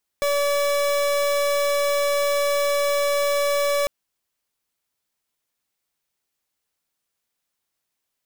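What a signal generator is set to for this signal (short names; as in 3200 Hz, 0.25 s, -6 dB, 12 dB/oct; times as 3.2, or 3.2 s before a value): pulse 573 Hz, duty 38% -21 dBFS 3.65 s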